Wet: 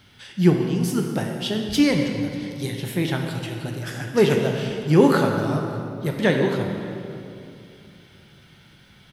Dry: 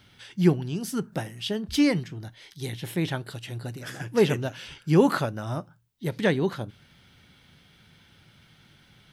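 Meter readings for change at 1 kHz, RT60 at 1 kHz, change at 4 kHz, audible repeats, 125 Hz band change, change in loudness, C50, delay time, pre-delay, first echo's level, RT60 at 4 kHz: +5.0 dB, 2.5 s, +4.5 dB, 1, +5.0 dB, +4.5 dB, 4.0 dB, 0.588 s, 16 ms, -23.0 dB, 1.8 s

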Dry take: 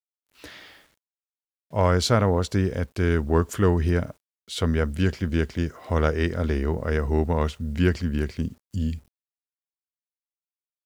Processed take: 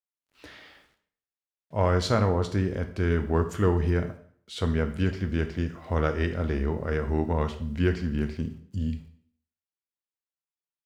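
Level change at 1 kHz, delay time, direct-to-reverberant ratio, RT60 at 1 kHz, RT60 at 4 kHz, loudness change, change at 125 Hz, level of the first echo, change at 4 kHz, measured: -3.0 dB, none, 7.0 dB, 0.60 s, 0.50 s, -3.0 dB, -2.5 dB, none, -5.5 dB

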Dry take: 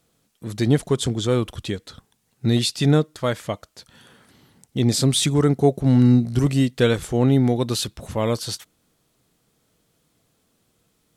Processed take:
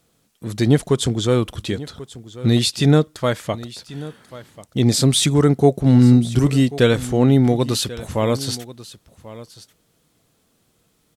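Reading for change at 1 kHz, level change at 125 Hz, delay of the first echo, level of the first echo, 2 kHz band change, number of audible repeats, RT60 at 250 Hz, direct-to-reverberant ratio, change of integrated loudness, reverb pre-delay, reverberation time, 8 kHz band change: +3.0 dB, +3.0 dB, 1.089 s, -17.5 dB, +3.0 dB, 1, none, none, +3.0 dB, none, none, +3.0 dB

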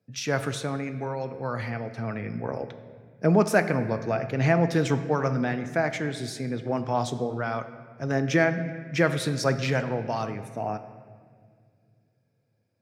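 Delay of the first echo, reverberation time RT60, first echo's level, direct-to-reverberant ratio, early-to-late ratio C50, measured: none, 2.1 s, none, 9.5 dB, 11.0 dB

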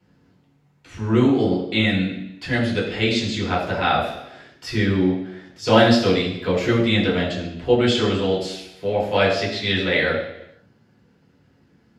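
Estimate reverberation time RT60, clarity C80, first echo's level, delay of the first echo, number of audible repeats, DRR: 0.85 s, 7.0 dB, none, none, none, -7.5 dB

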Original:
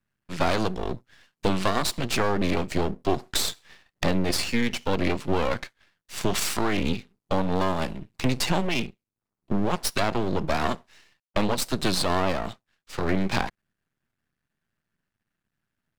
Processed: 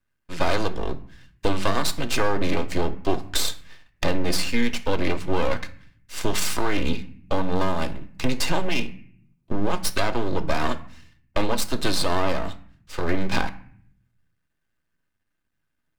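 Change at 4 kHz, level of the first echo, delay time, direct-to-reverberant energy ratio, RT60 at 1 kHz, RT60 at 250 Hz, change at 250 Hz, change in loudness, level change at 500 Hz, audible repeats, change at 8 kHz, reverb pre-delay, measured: +1.0 dB, none, none, 8.0 dB, 0.55 s, 0.85 s, -0.5 dB, +0.5 dB, +1.0 dB, none, +1.0 dB, 3 ms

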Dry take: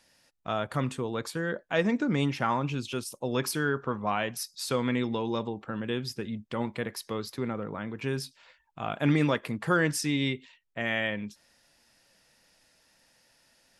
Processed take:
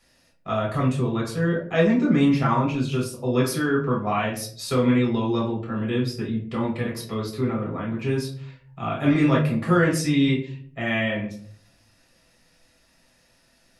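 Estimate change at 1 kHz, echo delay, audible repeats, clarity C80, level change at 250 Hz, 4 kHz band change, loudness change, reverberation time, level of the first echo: +5.0 dB, none, none, 12.5 dB, +8.5 dB, +2.5 dB, +7.0 dB, 0.55 s, none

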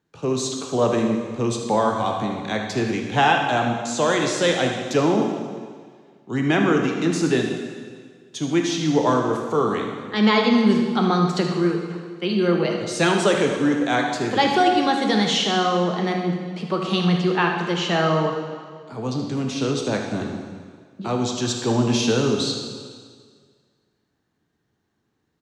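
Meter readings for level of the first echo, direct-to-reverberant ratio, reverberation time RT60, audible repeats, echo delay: -11.0 dB, 1.5 dB, 1.8 s, 1, 76 ms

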